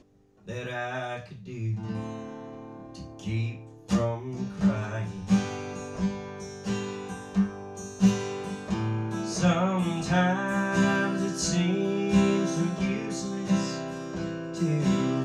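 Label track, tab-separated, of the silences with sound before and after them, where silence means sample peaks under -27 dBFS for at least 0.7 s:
2.100000	3.260000	silence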